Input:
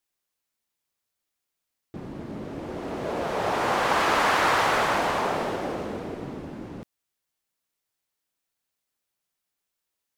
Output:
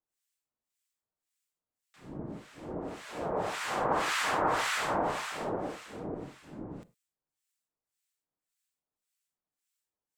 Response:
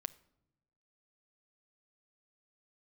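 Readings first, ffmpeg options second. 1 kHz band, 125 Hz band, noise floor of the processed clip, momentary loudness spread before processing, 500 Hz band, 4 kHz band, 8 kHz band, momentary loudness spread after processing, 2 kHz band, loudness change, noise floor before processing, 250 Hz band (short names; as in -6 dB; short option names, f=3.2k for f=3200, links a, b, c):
-7.5 dB, -6.0 dB, under -85 dBFS, 18 LU, -7.0 dB, -6.5 dB, -3.0 dB, 17 LU, -8.0 dB, -7.5 dB, -83 dBFS, -6.5 dB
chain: -filter_complex "[0:a]equalizer=f=7.8k:t=o:w=0.39:g=7,acrossover=split=1300[a][b];[a]aeval=exprs='val(0)*(1-1/2+1/2*cos(2*PI*1.8*n/s))':c=same[c];[b]aeval=exprs='val(0)*(1-1/2-1/2*cos(2*PI*1.8*n/s))':c=same[d];[c][d]amix=inputs=2:normalize=0[e];[1:a]atrim=start_sample=2205,afade=t=out:st=0.16:d=0.01,atrim=end_sample=7497[f];[e][f]afir=irnorm=-1:irlink=0"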